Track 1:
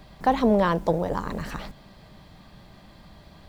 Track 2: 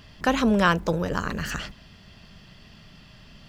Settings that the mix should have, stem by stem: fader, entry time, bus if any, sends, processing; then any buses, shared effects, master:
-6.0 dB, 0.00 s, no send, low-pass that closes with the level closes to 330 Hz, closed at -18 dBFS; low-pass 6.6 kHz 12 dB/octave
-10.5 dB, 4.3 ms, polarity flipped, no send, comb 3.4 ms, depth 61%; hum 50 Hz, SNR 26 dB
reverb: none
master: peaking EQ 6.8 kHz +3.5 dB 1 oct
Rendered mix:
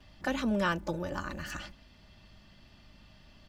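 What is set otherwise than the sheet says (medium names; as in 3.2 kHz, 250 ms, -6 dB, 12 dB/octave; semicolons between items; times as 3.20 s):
stem 1 -6.0 dB -> -15.5 dB; master: missing peaking EQ 6.8 kHz +3.5 dB 1 oct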